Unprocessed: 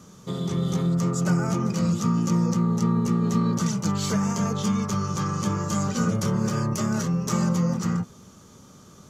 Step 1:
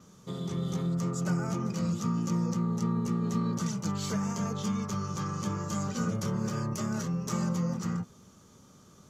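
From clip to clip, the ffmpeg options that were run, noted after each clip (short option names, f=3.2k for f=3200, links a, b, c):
-af "adynamicequalizer=threshold=0.00112:dfrequency=9200:dqfactor=4.3:tfrequency=9200:tqfactor=4.3:attack=5:release=100:ratio=0.375:range=2:mode=cutabove:tftype=bell,volume=-7dB"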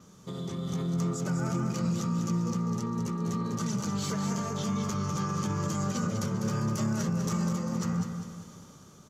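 -af "alimiter=level_in=5.5dB:limit=-24dB:level=0:latency=1:release=77,volume=-5.5dB,dynaudnorm=f=200:g=7:m=5dB,aecho=1:1:199|398|597|796|995:0.447|0.192|0.0826|0.0355|0.0153,volume=1dB"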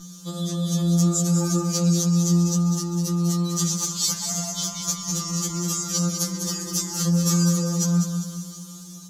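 -af "aexciter=amount=3.8:drive=7.6:freq=3.3k,aeval=exprs='val(0)+0.0112*(sin(2*PI*60*n/s)+sin(2*PI*2*60*n/s)/2+sin(2*PI*3*60*n/s)/3+sin(2*PI*4*60*n/s)/4+sin(2*PI*5*60*n/s)/5)':c=same,afftfilt=real='re*2.83*eq(mod(b,8),0)':imag='im*2.83*eq(mod(b,8),0)':win_size=2048:overlap=0.75,volume=3.5dB"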